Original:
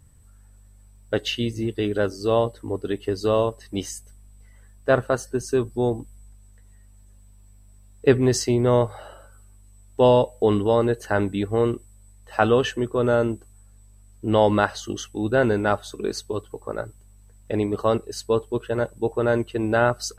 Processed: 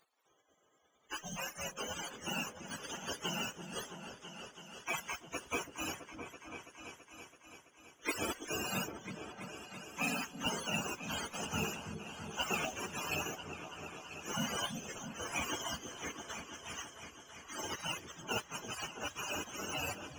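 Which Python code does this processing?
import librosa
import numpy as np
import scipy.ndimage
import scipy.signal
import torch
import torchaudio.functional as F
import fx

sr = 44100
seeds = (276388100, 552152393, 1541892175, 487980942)

p1 = fx.octave_mirror(x, sr, pivot_hz=560.0)
p2 = fx.spec_gate(p1, sr, threshold_db=-25, keep='weak')
p3 = fx.mod_noise(p2, sr, seeds[0], snr_db=20)
p4 = p3 + fx.echo_opening(p3, sr, ms=331, hz=400, octaves=2, feedback_pct=70, wet_db=-6, dry=0)
y = p4 * 10.0 ** (7.0 / 20.0)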